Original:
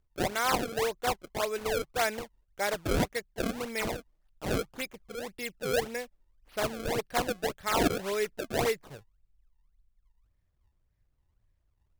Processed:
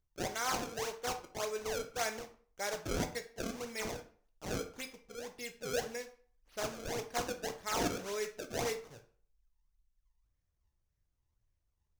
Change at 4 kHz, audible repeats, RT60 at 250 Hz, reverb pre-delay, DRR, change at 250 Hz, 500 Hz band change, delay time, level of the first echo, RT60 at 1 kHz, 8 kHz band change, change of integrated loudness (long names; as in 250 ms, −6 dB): −5.5 dB, no echo audible, 0.45 s, 11 ms, 6.0 dB, −8.0 dB, −7.5 dB, no echo audible, no echo audible, 0.45 s, −2.0 dB, −7.0 dB